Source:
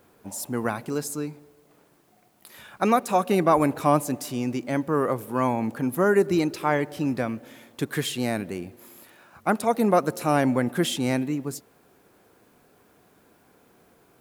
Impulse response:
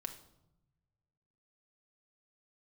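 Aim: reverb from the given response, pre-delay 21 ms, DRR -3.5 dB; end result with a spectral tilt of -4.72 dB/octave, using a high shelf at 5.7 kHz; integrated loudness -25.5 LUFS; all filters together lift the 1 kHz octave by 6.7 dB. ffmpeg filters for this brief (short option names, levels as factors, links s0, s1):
-filter_complex "[0:a]equalizer=f=1000:t=o:g=8.5,highshelf=f=5700:g=8.5,asplit=2[s0][s1];[1:a]atrim=start_sample=2205,adelay=21[s2];[s1][s2]afir=irnorm=-1:irlink=0,volume=1.88[s3];[s0][s3]amix=inputs=2:normalize=0,volume=0.355"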